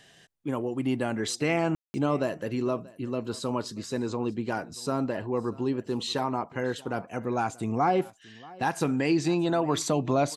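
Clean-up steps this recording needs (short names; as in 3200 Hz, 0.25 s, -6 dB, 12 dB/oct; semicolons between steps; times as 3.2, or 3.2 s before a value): room tone fill 1.75–1.94; inverse comb 0.633 s -22 dB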